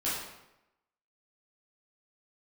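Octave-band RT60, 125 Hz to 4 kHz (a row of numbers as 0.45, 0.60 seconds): 0.90, 0.90, 0.90, 0.90, 0.80, 0.70 seconds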